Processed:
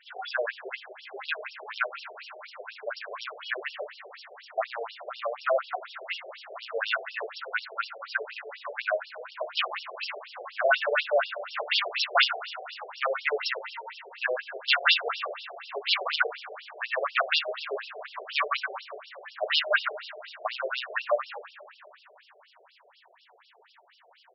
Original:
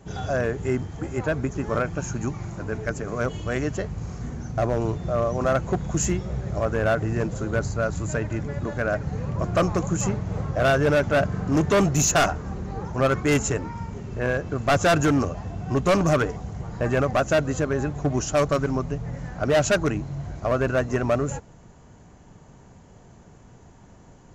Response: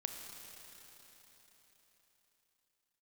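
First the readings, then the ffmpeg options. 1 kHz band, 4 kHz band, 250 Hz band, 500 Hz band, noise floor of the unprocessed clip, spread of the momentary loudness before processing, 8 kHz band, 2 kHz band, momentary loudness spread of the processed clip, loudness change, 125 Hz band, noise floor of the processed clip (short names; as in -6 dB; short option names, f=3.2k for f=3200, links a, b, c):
-4.0 dB, +7.0 dB, under -30 dB, -8.5 dB, -50 dBFS, 11 LU, under -30 dB, +1.0 dB, 16 LU, -5.0 dB, under -40 dB, -60 dBFS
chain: -filter_complex "[0:a]tiltshelf=f=1.1k:g=-10,asplit=2[a][b];[b]adelay=32,volume=-10.5dB[c];[a][c]amix=inputs=2:normalize=0,acrossover=split=130|3100[d][e][f];[d]aeval=exprs='(mod(168*val(0)+1,2)-1)/168':c=same[g];[g][e][f]amix=inputs=3:normalize=0,bandreject=f=50:t=h:w=6,bandreject=f=100:t=h:w=6,bandreject=f=150:t=h:w=6,bandreject=f=200:t=h:w=6,bandreject=f=250:t=h:w=6,bandreject=f=300:t=h:w=6,bandreject=f=350:t=h:w=6,bandreject=f=400:t=h:w=6,asplit=2[h][i];[1:a]atrim=start_sample=2205,asetrate=52920,aresample=44100[j];[i][j]afir=irnorm=-1:irlink=0,volume=-2dB[k];[h][k]amix=inputs=2:normalize=0,afftfilt=real='re*between(b*sr/1024,520*pow(4000/520,0.5+0.5*sin(2*PI*4.1*pts/sr))/1.41,520*pow(4000/520,0.5+0.5*sin(2*PI*4.1*pts/sr))*1.41)':imag='im*between(b*sr/1024,520*pow(4000/520,0.5+0.5*sin(2*PI*4.1*pts/sr))/1.41,520*pow(4000/520,0.5+0.5*sin(2*PI*4.1*pts/sr))*1.41)':win_size=1024:overlap=0.75"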